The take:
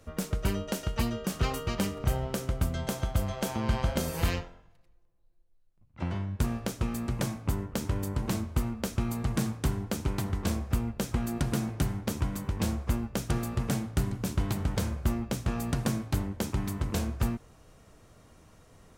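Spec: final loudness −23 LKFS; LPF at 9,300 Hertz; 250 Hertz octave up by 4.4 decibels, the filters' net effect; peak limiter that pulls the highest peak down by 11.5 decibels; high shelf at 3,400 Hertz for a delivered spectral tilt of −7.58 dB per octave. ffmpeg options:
ffmpeg -i in.wav -af "lowpass=9300,equalizer=frequency=250:width_type=o:gain=5.5,highshelf=frequency=3400:gain=-7,volume=12dB,alimiter=limit=-13.5dB:level=0:latency=1" out.wav

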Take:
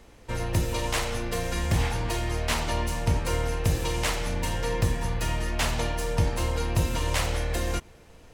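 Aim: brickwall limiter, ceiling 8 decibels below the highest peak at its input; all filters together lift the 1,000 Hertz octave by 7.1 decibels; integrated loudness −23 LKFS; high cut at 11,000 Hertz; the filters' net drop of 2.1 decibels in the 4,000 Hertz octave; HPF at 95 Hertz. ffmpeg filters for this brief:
ffmpeg -i in.wav -af "highpass=95,lowpass=11000,equalizer=frequency=1000:width_type=o:gain=8.5,equalizer=frequency=4000:width_type=o:gain=-3.5,volume=6dB,alimiter=limit=-12dB:level=0:latency=1" out.wav

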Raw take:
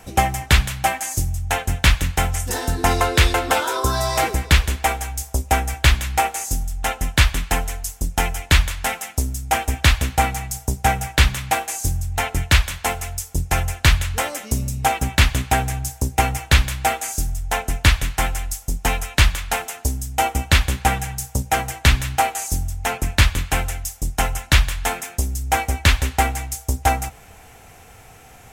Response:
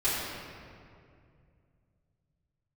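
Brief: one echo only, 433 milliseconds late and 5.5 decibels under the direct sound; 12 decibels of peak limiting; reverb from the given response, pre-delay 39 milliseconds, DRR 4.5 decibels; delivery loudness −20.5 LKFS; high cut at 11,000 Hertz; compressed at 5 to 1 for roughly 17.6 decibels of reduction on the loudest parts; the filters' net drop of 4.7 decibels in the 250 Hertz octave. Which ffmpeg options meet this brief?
-filter_complex "[0:a]lowpass=11000,equalizer=frequency=250:width_type=o:gain=-7,acompressor=threshold=-30dB:ratio=5,alimiter=limit=-23dB:level=0:latency=1,aecho=1:1:433:0.531,asplit=2[link_01][link_02];[1:a]atrim=start_sample=2205,adelay=39[link_03];[link_02][link_03]afir=irnorm=-1:irlink=0,volume=-15.5dB[link_04];[link_01][link_04]amix=inputs=2:normalize=0,volume=12dB"

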